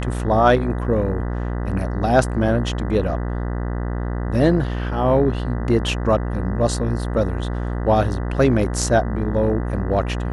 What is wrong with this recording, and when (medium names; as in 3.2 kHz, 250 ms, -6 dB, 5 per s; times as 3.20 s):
buzz 60 Hz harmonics 33 -24 dBFS